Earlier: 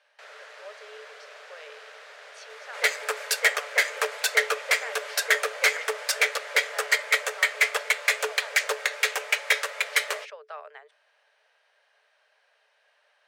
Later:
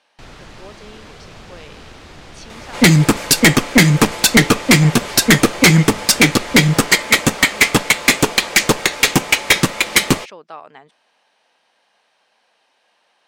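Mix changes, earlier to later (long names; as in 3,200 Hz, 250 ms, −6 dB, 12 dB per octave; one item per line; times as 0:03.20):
second sound +5.5 dB
master: remove Chebyshev high-pass with heavy ripple 420 Hz, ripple 9 dB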